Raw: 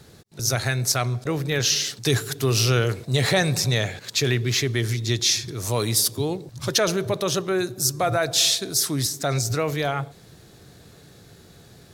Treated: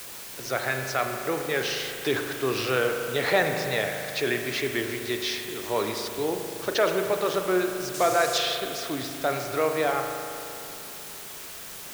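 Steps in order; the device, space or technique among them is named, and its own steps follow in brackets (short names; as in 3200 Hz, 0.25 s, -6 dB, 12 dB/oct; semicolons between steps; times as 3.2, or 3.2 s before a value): wax cylinder (BPF 340–2500 Hz; wow and flutter; white noise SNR 11 dB); 7.94–8.38 bell 6700 Hz +10.5 dB 1.5 oct; spring tank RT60 2.8 s, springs 38 ms, chirp 60 ms, DRR 4.5 dB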